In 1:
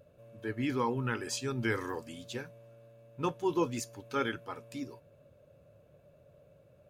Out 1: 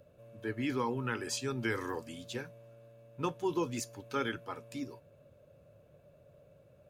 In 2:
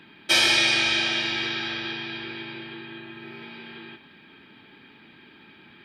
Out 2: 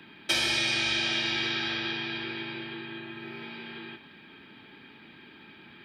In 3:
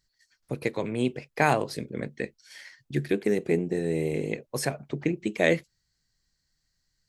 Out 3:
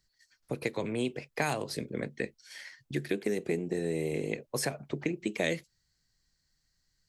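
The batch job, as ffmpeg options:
-filter_complex "[0:a]acrossover=split=260|3100[a][b][c];[a]acompressor=threshold=-38dB:ratio=4[d];[b]acompressor=threshold=-30dB:ratio=4[e];[c]acompressor=threshold=-30dB:ratio=4[f];[d][e][f]amix=inputs=3:normalize=0"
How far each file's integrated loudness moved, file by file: -1.5, -7.0, -5.5 LU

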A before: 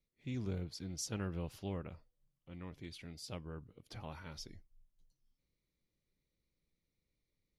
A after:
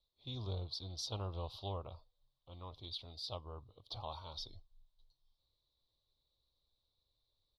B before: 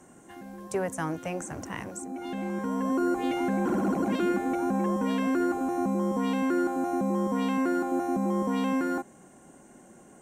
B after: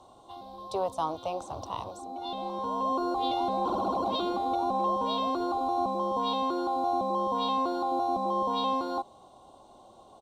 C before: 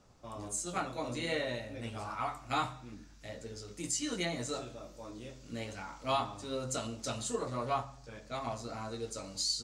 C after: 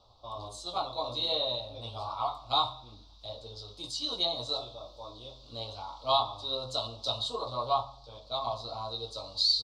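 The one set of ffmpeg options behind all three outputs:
-af "firequalizer=gain_entry='entry(110,0);entry(160,-14);entry(640,4);entry(1100,6);entry(1700,-27);entry(3700,15);entry(6700,-14);entry(12000,-12)':delay=0.05:min_phase=1,volume=1dB"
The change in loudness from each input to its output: -0.5, -1.5, +5.0 LU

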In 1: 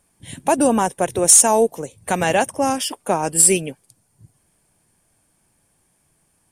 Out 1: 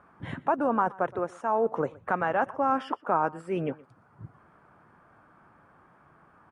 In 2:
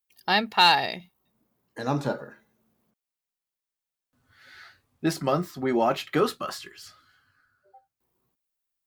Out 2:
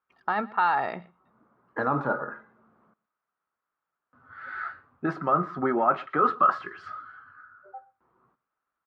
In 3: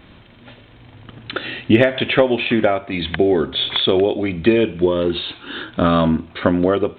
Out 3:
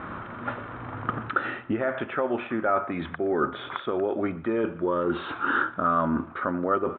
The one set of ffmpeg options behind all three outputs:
-af "highpass=f=140:p=1,areverse,acompressor=threshold=-26dB:ratio=16,areverse,alimiter=level_in=2dB:limit=-24dB:level=0:latency=1:release=396,volume=-2dB,lowpass=f=1.3k:t=q:w=4.6,aecho=1:1:120:0.0794,volume=8dB"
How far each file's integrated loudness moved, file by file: -12.5, -2.0, -10.0 LU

